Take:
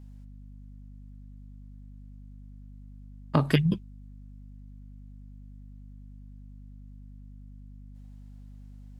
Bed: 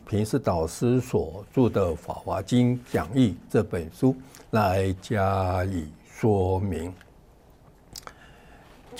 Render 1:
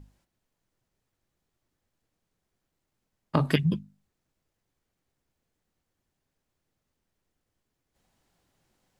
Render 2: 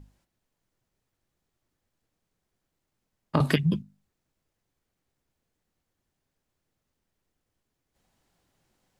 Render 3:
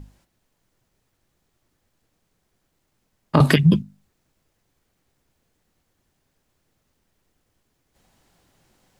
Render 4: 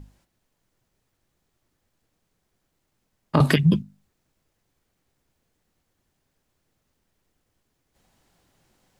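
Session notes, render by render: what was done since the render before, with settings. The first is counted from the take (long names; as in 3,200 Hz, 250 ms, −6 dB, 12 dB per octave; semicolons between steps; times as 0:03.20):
mains-hum notches 50/100/150/200/250 Hz
0:03.40–0:03.82: multiband upward and downward compressor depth 70%
speech leveller; boost into a limiter +12 dB
level −3 dB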